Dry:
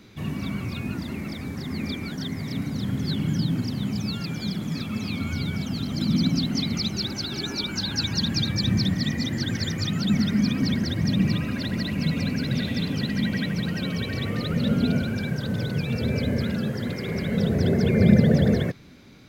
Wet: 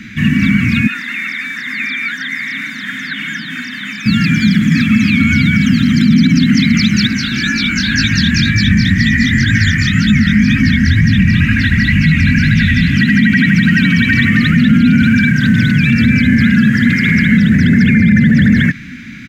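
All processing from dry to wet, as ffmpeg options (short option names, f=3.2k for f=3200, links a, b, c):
-filter_complex "[0:a]asettb=1/sr,asplit=3[a][b][c];[a]atrim=end=0.874[d];[b]atrim=start=0.87:end=4.06,asetpts=PTS-STARTPTS,afade=t=in:d=0.004:c=qsin,afade=t=out:st=3.186:d=0.004:c=qsin,highpass=780,acrossover=split=2600[e][f];[f]acompressor=threshold=-49dB:ratio=4:attack=1:release=60[g];[e][g]amix=inputs=2:normalize=0,aeval=exprs='val(0)+0.00316*sin(2*PI*3600*n/s)':c=same[h];[c]atrim=start=4.056[i];[d][h]acrossfade=d=0.004:c1=hsin:c2=qsin[j];[j][i]acrossfade=d=0.004:c1=qsin:c2=hsin,asettb=1/sr,asplit=3[k][l][m];[k]atrim=end=7.074[n];[l]atrim=start=7.07:end=12.97,asetpts=PTS-STARTPTS,afade=t=in:d=0.004:c=qsin,afade=t=out:st=5.896:d=0.004:c=qsin,asubboost=boost=9.5:cutoff=75,flanger=delay=18:depth=6.5:speed=2[o];[m]atrim=start=12.966[p];[n][o]acrossfade=d=0.004:c1=hsin:c2=qsin[q];[q][p]acrossfade=d=0.004:c1=qsin:c2=hsin,firequalizer=gain_entry='entry(100,0);entry(240,9);entry(400,-18);entry(750,-20);entry(1700,15);entry(4200,-4);entry(6800,2);entry(10000,-6)':delay=0.05:min_phase=1,alimiter=level_in=15dB:limit=-1dB:release=50:level=0:latency=1,volume=-1dB"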